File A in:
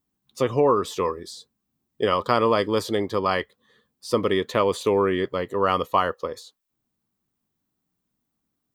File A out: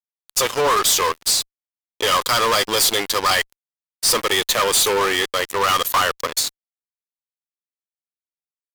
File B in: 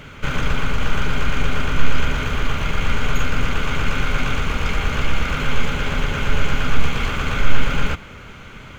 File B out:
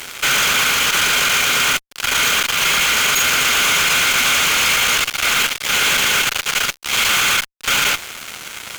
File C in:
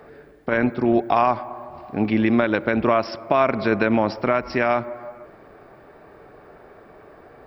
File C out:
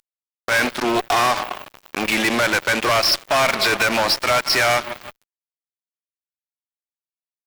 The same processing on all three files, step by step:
valve stage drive 13 dB, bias 0.45; differentiator; fuzz box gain 46 dB, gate -53 dBFS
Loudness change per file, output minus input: +5.5 LU, +9.0 LU, +3.0 LU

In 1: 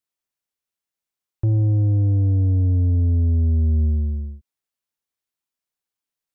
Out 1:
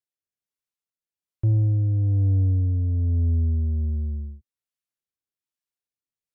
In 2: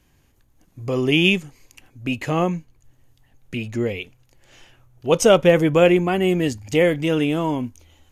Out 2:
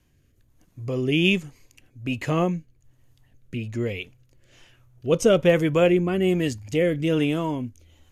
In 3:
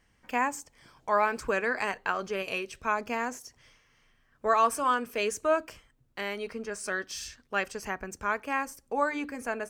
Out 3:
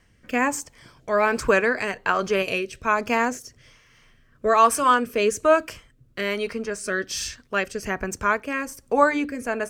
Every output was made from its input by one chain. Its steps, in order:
peaking EQ 110 Hz +4 dB 0.77 oct; band-stop 810 Hz, Q 12; rotary cabinet horn 1.2 Hz; normalise loudness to -23 LUFS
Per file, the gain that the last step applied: -5.0 dB, -1.5 dB, +10.5 dB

